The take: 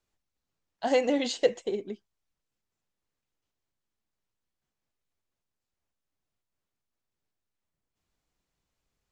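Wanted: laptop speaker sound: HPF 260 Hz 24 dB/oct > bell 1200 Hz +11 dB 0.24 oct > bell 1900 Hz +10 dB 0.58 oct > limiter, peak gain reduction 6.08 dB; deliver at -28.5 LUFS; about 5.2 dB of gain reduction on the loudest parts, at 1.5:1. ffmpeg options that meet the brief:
-af "acompressor=threshold=-32dB:ratio=1.5,highpass=f=260:w=0.5412,highpass=f=260:w=1.3066,equalizer=f=1.2k:t=o:w=0.24:g=11,equalizer=f=1.9k:t=o:w=0.58:g=10,volume=4.5dB,alimiter=limit=-16.5dB:level=0:latency=1"

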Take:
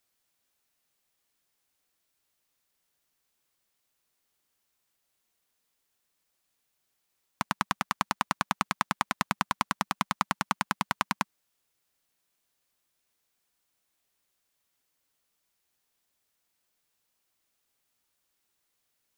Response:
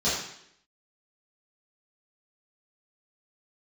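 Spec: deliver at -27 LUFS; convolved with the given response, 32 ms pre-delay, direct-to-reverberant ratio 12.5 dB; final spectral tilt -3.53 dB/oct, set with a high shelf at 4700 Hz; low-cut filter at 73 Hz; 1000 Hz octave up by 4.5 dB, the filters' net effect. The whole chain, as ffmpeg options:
-filter_complex "[0:a]highpass=73,equalizer=f=1k:t=o:g=5,highshelf=f=4.7k:g=3.5,asplit=2[a][b];[1:a]atrim=start_sample=2205,adelay=32[c];[b][c]afir=irnorm=-1:irlink=0,volume=-25dB[d];[a][d]amix=inputs=2:normalize=0,volume=1dB"

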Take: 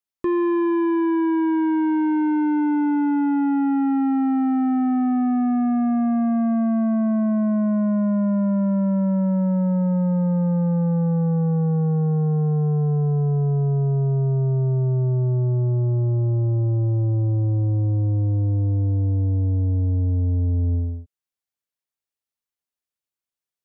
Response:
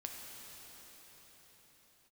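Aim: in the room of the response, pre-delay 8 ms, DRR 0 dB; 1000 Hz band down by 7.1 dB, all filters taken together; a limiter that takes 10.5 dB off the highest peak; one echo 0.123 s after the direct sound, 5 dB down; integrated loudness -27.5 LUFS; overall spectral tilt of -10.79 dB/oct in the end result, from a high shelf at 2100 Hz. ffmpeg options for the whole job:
-filter_complex "[0:a]equalizer=f=1k:t=o:g=-8.5,highshelf=f=2.1k:g=-4.5,alimiter=level_in=4.5dB:limit=-24dB:level=0:latency=1,volume=-4.5dB,aecho=1:1:123:0.562,asplit=2[a][b];[1:a]atrim=start_sample=2205,adelay=8[c];[b][c]afir=irnorm=-1:irlink=0,volume=1.5dB[d];[a][d]amix=inputs=2:normalize=0,volume=-1dB"

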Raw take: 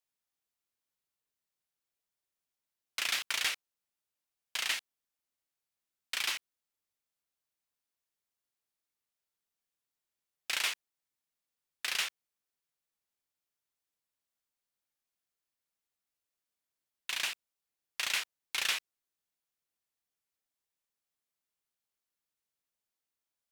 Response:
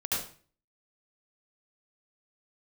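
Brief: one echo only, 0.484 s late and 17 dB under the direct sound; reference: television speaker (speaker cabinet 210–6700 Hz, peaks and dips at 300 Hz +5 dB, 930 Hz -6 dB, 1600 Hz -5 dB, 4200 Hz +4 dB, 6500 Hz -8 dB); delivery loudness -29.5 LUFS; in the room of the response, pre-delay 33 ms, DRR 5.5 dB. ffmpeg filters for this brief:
-filter_complex "[0:a]aecho=1:1:484:0.141,asplit=2[a][b];[1:a]atrim=start_sample=2205,adelay=33[c];[b][c]afir=irnorm=-1:irlink=0,volume=-12.5dB[d];[a][d]amix=inputs=2:normalize=0,highpass=f=210:w=0.5412,highpass=f=210:w=1.3066,equalizer=f=300:t=q:w=4:g=5,equalizer=f=930:t=q:w=4:g=-6,equalizer=f=1.6k:t=q:w=4:g=-5,equalizer=f=4.2k:t=q:w=4:g=4,equalizer=f=6.5k:t=q:w=4:g=-8,lowpass=f=6.7k:w=0.5412,lowpass=f=6.7k:w=1.3066,volume=4.5dB"

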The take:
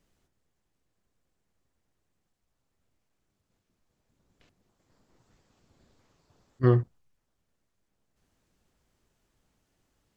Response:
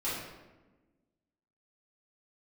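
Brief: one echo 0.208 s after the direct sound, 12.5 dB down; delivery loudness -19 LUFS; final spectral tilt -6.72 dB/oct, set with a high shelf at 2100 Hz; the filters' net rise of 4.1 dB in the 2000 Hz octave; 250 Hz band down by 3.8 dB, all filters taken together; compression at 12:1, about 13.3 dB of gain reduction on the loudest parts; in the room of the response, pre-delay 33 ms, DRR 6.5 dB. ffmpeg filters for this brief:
-filter_complex "[0:a]equalizer=f=250:t=o:g=-6.5,equalizer=f=2k:t=o:g=7.5,highshelf=f=2.1k:g=-5,acompressor=threshold=-31dB:ratio=12,aecho=1:1:208:0.237,asplit=2[a][b];[1:a]atrim=start_sample=2205,adelay=33[c];[b][c]afir=irnorm=-1:irlink=0,volume=-13dB[d];[a][d]amix=inputs=2:normalize=0,volume=21.5dB"

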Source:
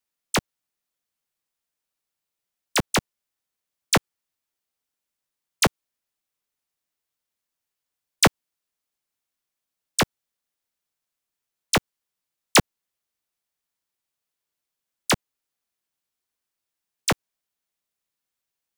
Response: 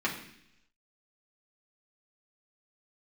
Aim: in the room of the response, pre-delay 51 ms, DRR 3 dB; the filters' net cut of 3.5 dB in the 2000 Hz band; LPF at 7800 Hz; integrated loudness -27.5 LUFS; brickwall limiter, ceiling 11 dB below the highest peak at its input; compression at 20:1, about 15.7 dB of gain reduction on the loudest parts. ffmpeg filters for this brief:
-filter_complex "[0:a]lowpass=7.8k,equalizer=f=2k:t=o:g=-4.5,acompressor=threshold=-29dB:ratio=20,alimiter=level_in=4.5dB:limit=-24dB:level=0:latency=1,volume=-4.5dB,asplit=2[a][b];[1:a]atrim=start_sample=2205,adelay=51[c];[b][c]afir=irnorm=-1:irlink=0,volume=-12dB[d];[a][d]amix=inputs=2:normalize=0,volume=12.5dB"

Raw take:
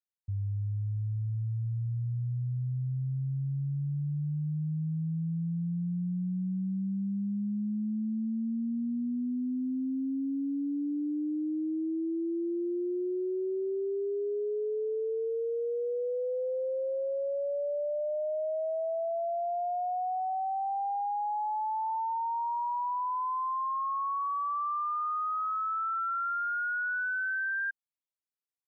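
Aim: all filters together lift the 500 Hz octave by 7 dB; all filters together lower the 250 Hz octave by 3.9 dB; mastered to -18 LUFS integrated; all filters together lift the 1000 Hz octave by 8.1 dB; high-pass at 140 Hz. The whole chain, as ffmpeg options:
-af "highpass=140,equalizer=f=250:t=o:g=-8.5,equalizer=f=500:t=o:g=8.5,equalizer=f=1k:t=o:g=8,volume=7dB"

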